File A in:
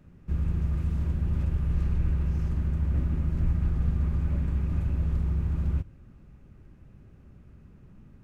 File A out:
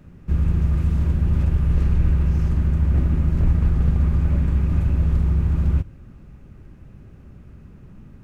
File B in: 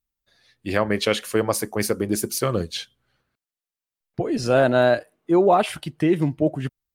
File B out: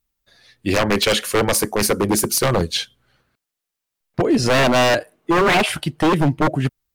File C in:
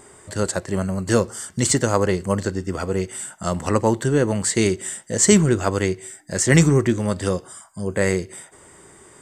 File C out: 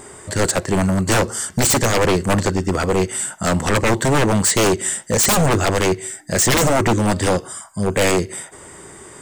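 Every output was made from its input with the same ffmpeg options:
-af "aeval=exprs='0.126*(abs(mod(val(0)/0.126+3,4)-2)-1)':channel_layout=same,volume=8dB"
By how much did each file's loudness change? +8.0, +4.0, +3.0 LU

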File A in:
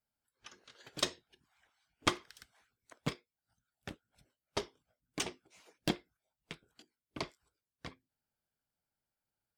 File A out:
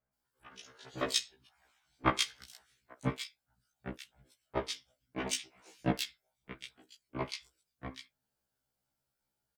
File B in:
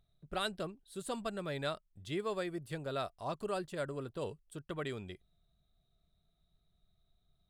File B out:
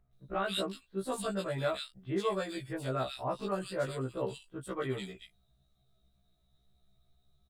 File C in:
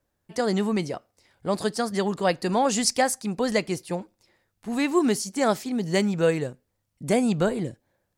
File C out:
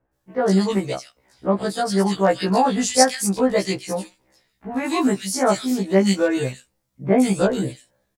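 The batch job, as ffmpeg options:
-filter_complex "[0:a]acrossover=split=2200[link_01][link_02];[link_02]adelay=130[link_03];[link_01][link_03]amix=inputs=2:normalize=0,afftfilt=real='re*1.73*eq(mod(b,3),0)':imag='im*1.73*eq(mod(b,3),0)':win_size=2048:overlap=0.75,volume=7dB"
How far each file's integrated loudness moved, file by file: +3.0, +4.0, +4.5 LU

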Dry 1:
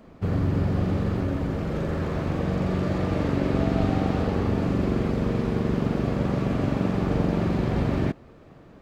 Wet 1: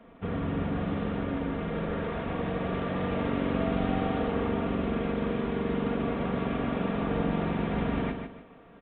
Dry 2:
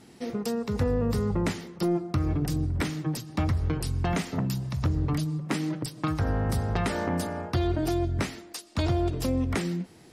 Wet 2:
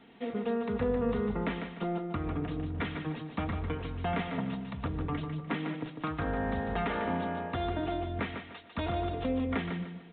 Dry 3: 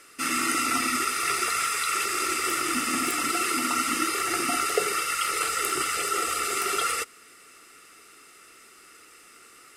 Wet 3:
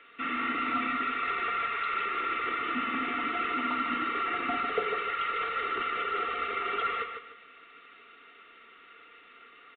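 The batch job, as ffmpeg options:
-filter_complex "[0:a]acrossover=split=2700[link_01][link_02];[link_02]acompressor=threshold=-39dB:ratio=4:attack=1:release=60[link_03];[link_01][link_03]amix=inputs=2:normalize=0,lowshelf=frequency=330:gain=-8,aecho=1:1:4.3:0.47,acrossover=split=370[link_04][link_05];[link_05]asoftclip=type=tanh:threshold=-24.5dB[link_06];[link_04][link_06]amix=inputs=2:normalize=0,aecho=1:1:149|298|447|596:0.447|0.138|0.0429|0.0133,aresample=8000,aresample=44100,volume=-1dB"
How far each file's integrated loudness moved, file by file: −5.0, −5.0, −5.0 LU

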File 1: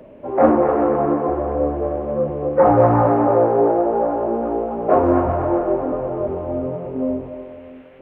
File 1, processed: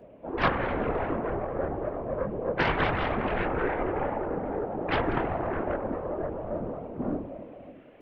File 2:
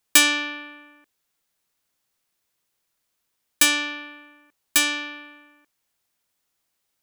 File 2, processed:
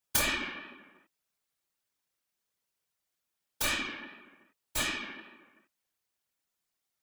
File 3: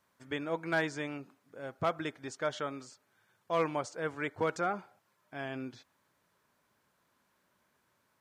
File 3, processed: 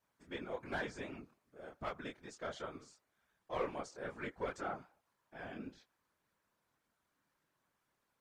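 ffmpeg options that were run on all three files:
-af "aeval=exprs='0.891*(cos(1*acos(clip(val(0)/0.891,-1,1)))-cos(1*PI/2))+0.355*(cos(3*acos(clip(val(0)/0.891,-1,1)))-cos(3*PI/2))+0.398*(cos(4*acos(clip(val(0)/0.891,-1,1)))-cos(4*PI/2))+0.282*(cos(6*acos(clip(val(0)/0.891,-1,1)))-cos(6*PI/2))+0.112*(cos(7*acos(clip(val(0)/0.891,-1,1)))-cos(7*PI/2))':channel_layout=same,flanger=delay=19.5:depth=7.7:speed=2.6,afftfilt=real='hypot(re,im)*cos(2*PI*random(0))':imag='hypot(re,im)*sin(2*PI*random(1))':win_size=512:overlap=0.75"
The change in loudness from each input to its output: −11.5, −12.0, −8.5 LU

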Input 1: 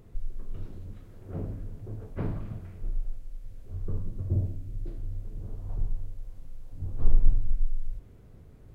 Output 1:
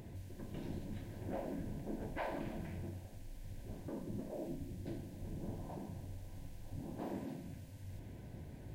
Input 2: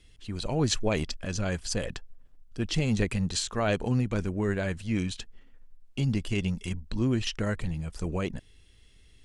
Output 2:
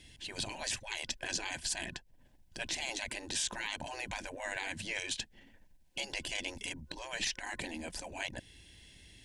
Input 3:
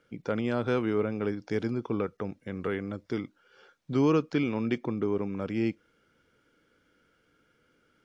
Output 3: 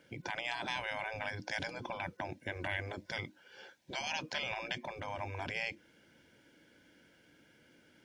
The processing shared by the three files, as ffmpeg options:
-af "highpass=frequency=120:poles=1,afftfilt=real='re*lt(hypot(re,im),0.0501)':imag='im*lt(hypot(re,im),0.0501)':win_size=1024:overlap=0.75,superequalizer=7b=0.501:10b=0.251,alimiter=level_in=5.5dB:limit=-24dB:level=0:latency=1:release=282,volume=-5.5dB,aeval=exprs='0.0335*(cos(1*acos(clip(val(0)/0.0335,-1,1)))-cos(1*PI/2))+0.000237*(cos(6*acos(clip(val(0)/0.0335,-1,1)))-cos(6*PI/2))':channel_layout=same,volume=6.5dB"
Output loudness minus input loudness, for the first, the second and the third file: −10.0, −8.0, −8.5 LU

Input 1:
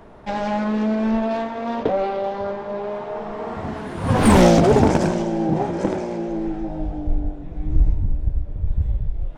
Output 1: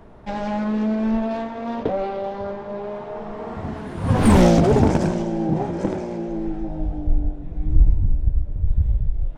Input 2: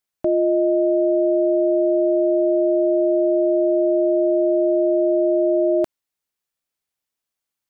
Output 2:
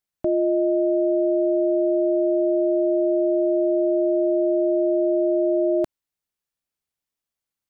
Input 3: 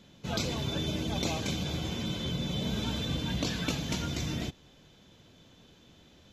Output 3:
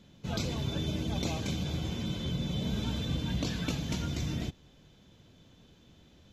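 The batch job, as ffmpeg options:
-af "lowshelf=frequency=240:gain=6.5,volume=-4dB"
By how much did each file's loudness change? −1.0, −2.5, −1.0 LU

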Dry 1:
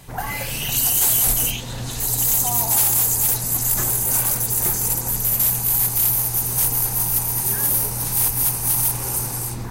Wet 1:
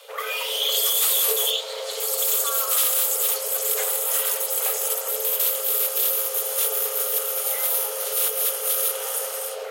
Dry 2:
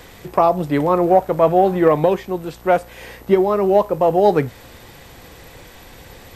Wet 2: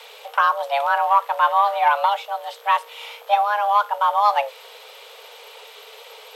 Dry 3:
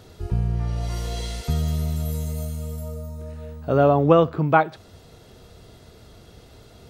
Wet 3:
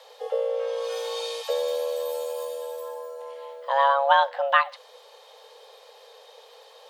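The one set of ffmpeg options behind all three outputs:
-af "afreqshift=410,equalizer=frequency=3300:width_type=o:width=0.73:gain=11,volume=-4dB"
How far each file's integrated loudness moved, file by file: −3.5, −3.0, −2.5 LU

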